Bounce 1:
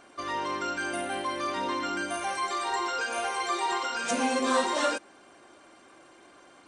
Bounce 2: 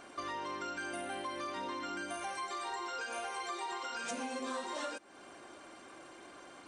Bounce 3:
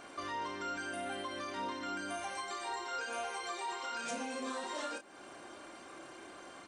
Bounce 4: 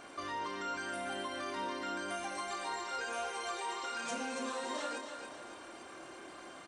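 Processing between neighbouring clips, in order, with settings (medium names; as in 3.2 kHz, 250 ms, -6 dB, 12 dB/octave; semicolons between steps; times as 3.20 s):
compression 5:1, threshold -40 dBFS, peak gain reduction 17 dB; trim +1.5 dB
in parallel at +1 dB: peak limiter -35 dBFS, peak gain reduction 7.5 dB; on the sum: doubling 30 ms -6 dB; trim -5.5 dB
feedback delay 280 ms, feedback 45%, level -7 dB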